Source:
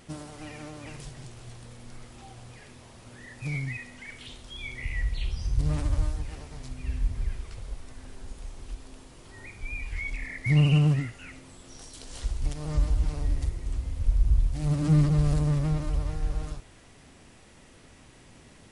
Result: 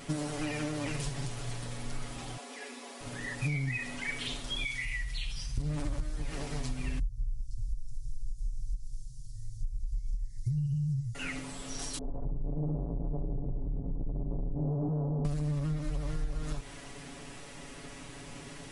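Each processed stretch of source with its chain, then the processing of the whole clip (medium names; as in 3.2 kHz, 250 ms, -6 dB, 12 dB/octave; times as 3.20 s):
2.37–3.01 s: steep high-pass 210 Hz 96 dB/octave + comb of notches 310 Hz
4.64–5.58 s: amplifier tone stack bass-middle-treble 5-5-5 + band-stop 350 Hz, Q 5.1 + level flattener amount 50%
6.99–11.15 s: elliptic band-stop 110–5600 Hz + tone controls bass +4 dB, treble -10 dB
11.98–15.25 s: bass shelf 470 Hz +5.5 dB + valve stage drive 32 dB, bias 0.45 + inverse Chebyshev low-pass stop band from 2.7 kHz, stop band 60 dB
whole clip: peaking EQ 86 Hz -7.5 dB 0.91 oct; comb 7.1 ms, depth 84%; compression 12:1, threshold -34 dBFS; trim +5.5 dB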